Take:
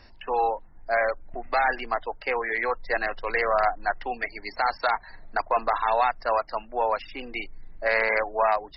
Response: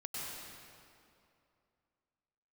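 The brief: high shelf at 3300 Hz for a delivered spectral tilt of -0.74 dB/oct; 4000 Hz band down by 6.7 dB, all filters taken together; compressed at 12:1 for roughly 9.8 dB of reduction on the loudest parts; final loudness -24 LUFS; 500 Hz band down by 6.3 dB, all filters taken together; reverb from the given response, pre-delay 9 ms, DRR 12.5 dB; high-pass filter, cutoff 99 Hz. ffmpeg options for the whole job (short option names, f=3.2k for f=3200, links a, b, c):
-filter_complex "[0:a]highpass=99,equalizer=f=500:t=o:g=-8,highshelf=f=3.3k:g=-5,equalizer=f=4k:t=o:g=-5,acompressor=threshold=-31dB:ratio=12,asplit=2[a][b];[1:a]atrim=start_sample=2205,adelay=9[c];[b][c]afir=irnorm=-1:irlink=0,volume=-13.5dB[d];[a][d]amix=inputs=2:normalize=0,volume=13dB"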